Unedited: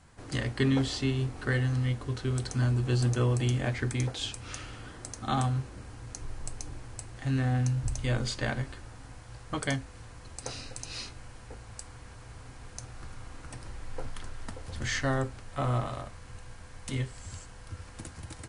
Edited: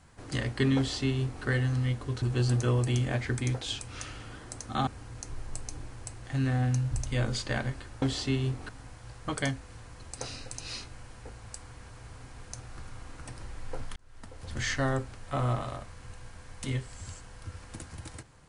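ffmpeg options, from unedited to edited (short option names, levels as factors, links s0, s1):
-filter_complex "[0:a]asplit=6[s0][s1][s2][s3][s4][s5];[s0]atrim=end=2.222[s6];[s1]atrim=start=2.748:end=5.402[s7];[s2]atrim=start=5.788:end=8.942[s8];[s3]atrim=start=0.768:end=1.442[s9];[s4]atrim=start=8.938:end=14.21,asetpts=PTS-STARTPTS,afade=t=out:st=5.268:d=0.004:c=hsin[s10];[s5]atrim=start=14.21,asetpts=PTS-STARTPTS,afade=t=in:d=0.63[s11];[s6][s7]acrossfade=d=0.004:c1=hsin:c2=hsin[s12];[s12][s8]acrossfade=d=0.004:c1=hsin:c2=hsin[s13];[s13][s9]acrossfade=d=0.004:c1=hsin:c2=hsin[s14];[s10][s11]concat=n=2:v=0:a=1[s15];[s14][s15]acrossfade=d=0.004:c1=hsin:c2=hsin"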